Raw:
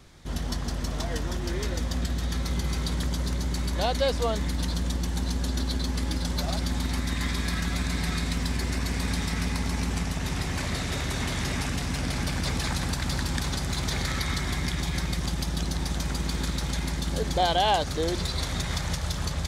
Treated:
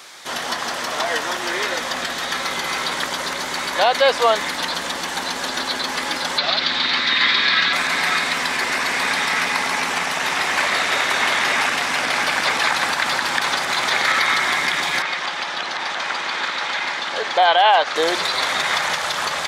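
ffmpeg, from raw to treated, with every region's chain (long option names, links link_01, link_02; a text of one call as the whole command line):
ffmpeg -i in.wav -filter_complex "[0:a]asettb=1/sr,asplit=3[link_01][link_02][link_03];[link_01]atrim=end=6.384[link_04];[link_02]atrim=start=6.38:end=7.73,asetpts=PTS-STARTPTS,afade=type=in:duration=0.004:curve=qsin,afade=type=out:start_time=1.346:duration=0.004:curve=qsin,lowpass=frequency=4100:width_type=q:width=3.2,equalizer=frequency=770:width=1.6:gain=-5[link_05];[link_03]atrim=start=7.726[link_06];[link_04][link_05]acrossfade=duration=0.004:curve1=hsin:curve2=qsin[link_07];[link_07][link_06]acrossfade=duration=0.004:curve1=qsin:curve2=hsin,asettb=1/sr,asplit=3[link_08][link_09][link_10];[link_08]atrim=end=15.024[link_11];[link_09]atrim=start=15.02:end=17.96,asetpts=PTS-STARTPTS,afade=type=in:duration=0.004:curve=qsin,afade=type=out:start_time=2.936:duration=0.004:curve=qsin,lowpass=3200,lowshelf=frequency=330:gain=-11.5,volume=18dB,asoftclip=hard,volume=-18dB[link_12];[link_10]atrim=start=17.956[link_13];[link_11][link_12]acrossfade=duration=0.004:curve1=hsin:curve2=qsin[link_14];[link_14][link_13]acrossfade=duration=0.004:curve1=qsin:curve2=hsin,highpass=800,acrossover=split=3200[link_15][link_16];[link_16]acompressor=threshold=-48dB:ratio=4:attack=1:release=60[link_17];[link_15][link_17]amix=inputs=2:normalize=0,alimiter=level_in=22.5dB:limit=-1dB:release=50:level=0:latency=1,volume=-4.5dB" out.wav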